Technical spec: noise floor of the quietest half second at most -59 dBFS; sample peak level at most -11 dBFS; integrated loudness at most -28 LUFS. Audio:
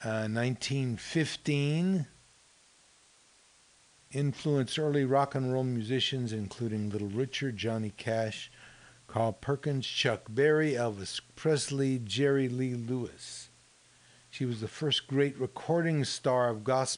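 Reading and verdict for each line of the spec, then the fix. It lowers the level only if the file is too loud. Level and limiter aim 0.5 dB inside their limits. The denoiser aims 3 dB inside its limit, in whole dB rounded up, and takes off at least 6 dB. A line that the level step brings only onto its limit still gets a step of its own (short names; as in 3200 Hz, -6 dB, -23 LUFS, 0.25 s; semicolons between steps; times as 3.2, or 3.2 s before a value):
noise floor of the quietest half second -63 dBFS: OK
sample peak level -13.5 dBFS: OK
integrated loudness -31.0 LUFS: OK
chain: none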